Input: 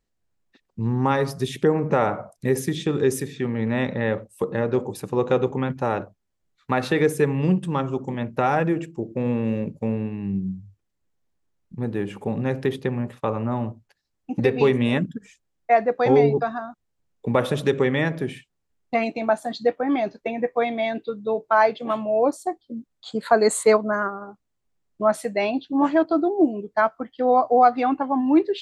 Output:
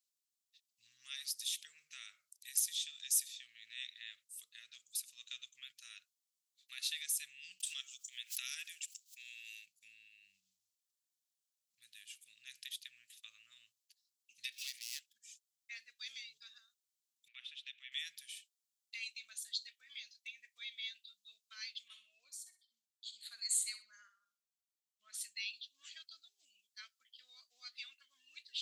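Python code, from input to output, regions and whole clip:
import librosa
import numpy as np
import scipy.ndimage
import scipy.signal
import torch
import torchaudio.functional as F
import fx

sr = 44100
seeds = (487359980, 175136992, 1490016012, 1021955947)

y = fx.chain(x, sr, fx.highpass(hz=660.0, slope=24),
    fx.high_shelf(hz=2500.0, db=8.5),
    fx.pre_swell(db_per_s=130.0), at=(7.6, 9.66))
y = fx.chain(y, sr, fx.median_filter(points=15),
    fx.highpass(hz=770.0, slope=24), at=(14.52, 15.14))
y = fx.chain(y, sr, fx.cheby1_bandpass(low_hz=1200.0, high_hz=2800.0, order=2),
    fx.dynamic_eq(hz=1400.0, q=1.2, threshold_db=-41.0, ratio=4.0, max_db=-5), at=(17.28, 17.92))
y = fx.chain(y, sr, fx.high_shelf(hz=2700.0, db=-8.0),
    fx.echo_feedback(ms=63, feedback_pct=28, wet_db=-11), at=(21.88, 25.21))
y = scipy.signal.sosfilt(scipy.signal.cheby2(4, 60, 920.0, 'highpass', fs=sr, output='sos'), y)
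y = fx.high_shelf(y, sr, hz=4100.0, db=9.0)
y = y * 10.0 ** (-6.0 / 20.0)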